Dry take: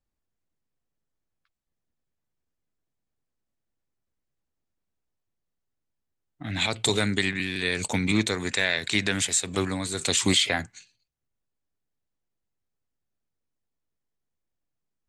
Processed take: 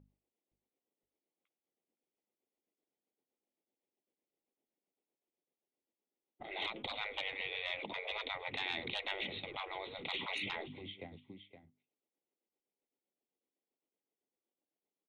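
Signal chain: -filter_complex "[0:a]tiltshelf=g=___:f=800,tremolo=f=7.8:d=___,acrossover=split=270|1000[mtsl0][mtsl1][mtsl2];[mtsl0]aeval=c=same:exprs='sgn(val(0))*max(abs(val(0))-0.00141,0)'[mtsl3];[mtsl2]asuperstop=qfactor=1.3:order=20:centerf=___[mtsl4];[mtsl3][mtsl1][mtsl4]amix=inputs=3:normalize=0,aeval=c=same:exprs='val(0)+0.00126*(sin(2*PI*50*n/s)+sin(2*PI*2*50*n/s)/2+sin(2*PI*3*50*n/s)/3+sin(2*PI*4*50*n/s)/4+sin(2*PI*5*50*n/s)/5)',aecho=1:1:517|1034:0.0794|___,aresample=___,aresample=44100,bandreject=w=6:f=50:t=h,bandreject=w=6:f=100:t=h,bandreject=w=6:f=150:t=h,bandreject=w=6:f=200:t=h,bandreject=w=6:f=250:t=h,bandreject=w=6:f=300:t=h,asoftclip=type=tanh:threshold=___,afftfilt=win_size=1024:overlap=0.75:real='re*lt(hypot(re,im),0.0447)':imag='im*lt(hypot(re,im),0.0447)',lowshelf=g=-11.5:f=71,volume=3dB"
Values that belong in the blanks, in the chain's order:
7.5, 0.54, 1300, 0.023, 8000, -14dB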